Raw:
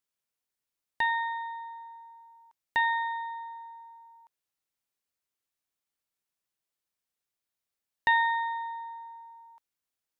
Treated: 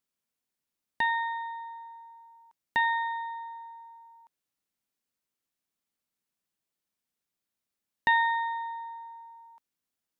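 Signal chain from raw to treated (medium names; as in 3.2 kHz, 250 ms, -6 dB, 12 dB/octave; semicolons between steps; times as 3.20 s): peaking EQ 220 Hz +8 dB 1.1 oct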